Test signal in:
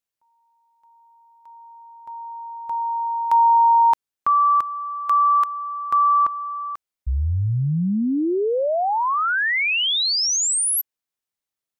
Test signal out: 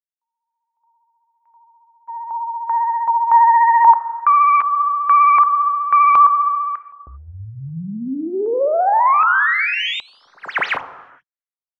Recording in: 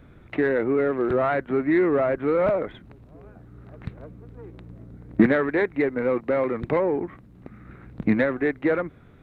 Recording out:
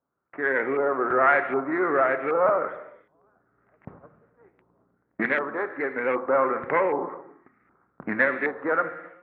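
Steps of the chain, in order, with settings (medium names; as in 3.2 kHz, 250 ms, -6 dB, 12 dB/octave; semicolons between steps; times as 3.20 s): tracing distortion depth 0.11 ms; gate -37 dBFS, range -17 dB; level rider gain up to 14 dB; vibrato 15 Hz 32 cents; band-pass filter 1.4 kHz, Q 0.58; gated-style reverb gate 430 ms falling, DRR 8.5 dB; LFO low-pass saw up 1.3 Hz 970–2300 Hz; tape noise reduction on one side only decoder only; trim -8 dB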